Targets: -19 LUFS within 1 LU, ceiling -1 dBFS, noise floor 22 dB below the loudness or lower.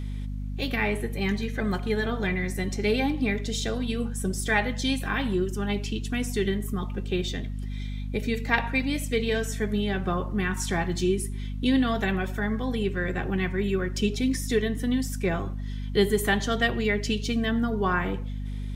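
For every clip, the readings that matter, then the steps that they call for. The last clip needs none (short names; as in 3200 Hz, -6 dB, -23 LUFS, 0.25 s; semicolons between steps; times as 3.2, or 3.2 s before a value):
hum 50 Hz; harmonics up to 250 Hz; hum level -30 dBFS; loudness -27.5 LUFS; peak -7.0 dBFS; loudness target -19.0 LUFS
-> notches 50/100/150/200/250 Hz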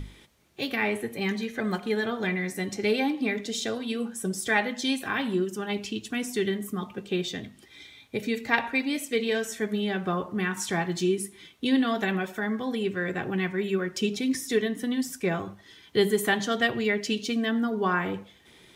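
hum none; loudness -28.0 LUFS; peak -7.5 dBFS; loudness target -19.0 LUFS
-> gain +9 dB; limiter -1 dBFS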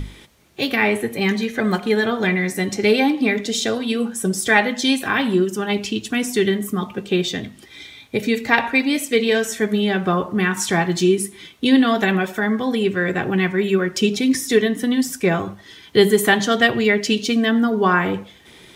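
loudness -19.0 LUFS; peak -1.0 dBFS; noise floor -46 dBFS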